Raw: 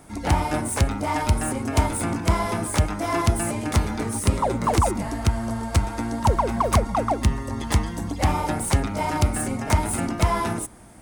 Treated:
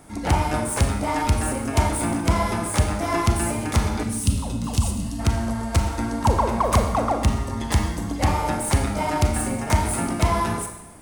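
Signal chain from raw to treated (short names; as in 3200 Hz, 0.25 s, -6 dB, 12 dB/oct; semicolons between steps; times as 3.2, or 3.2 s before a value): spectral gain 4.03–5.19, 280–2500 Hz -15 dB; Schroeder reverb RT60 0.93 s, combs from 28 ms, DRR 5 dB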